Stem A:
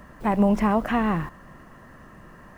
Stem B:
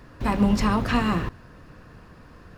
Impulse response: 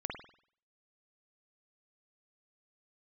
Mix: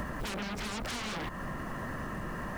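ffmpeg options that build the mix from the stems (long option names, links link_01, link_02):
-filter_complex "[0:a]acompressor=threshold=-24dB:ratio=2,aeval=exprs='0.158*sin(PI/2*7.94*val(0)/0.158)':channel_layout=same,volume=-8dB,asplit=2[link_01][link_02];[1:a]volume=1.5dB[link_03];[link_02]apad=whole_len=113395[link_04];[link_03][link_04]sidechaincompress=threshold=-36dB:ratio=8:attack=16:release=390[link_05];[link_01][link_05]amix=inputs=2:normalize=0,acompressor=threshold=-34dB:ratio=10"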